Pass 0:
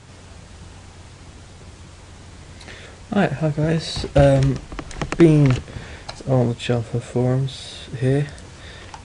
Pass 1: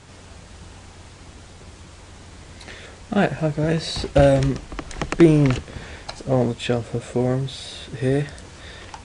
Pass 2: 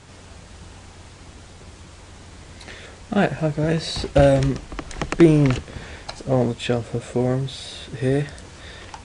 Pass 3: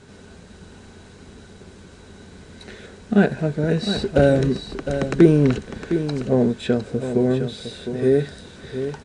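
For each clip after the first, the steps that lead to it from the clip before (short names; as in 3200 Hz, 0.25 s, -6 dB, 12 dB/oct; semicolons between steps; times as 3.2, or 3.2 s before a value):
bell 120 Hz -4.5 dB 0.81 oct
nothing audible
small resonant body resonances 220/400/1500/3900 Hz, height 12 dB, ringing for 35 ms; on a send: echo 0.709 s -9.5 dB; on the sum: gain -5.5 dB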